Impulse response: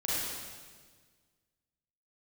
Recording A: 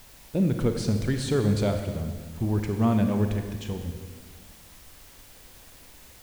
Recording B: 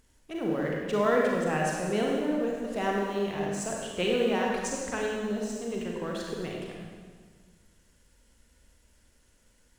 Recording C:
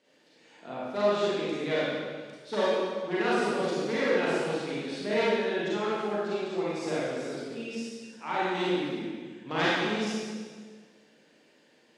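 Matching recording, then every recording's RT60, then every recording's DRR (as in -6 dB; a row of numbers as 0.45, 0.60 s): C; 1.6, 1.6, 1.6 s; 5.5, -2.0, -8.5 dB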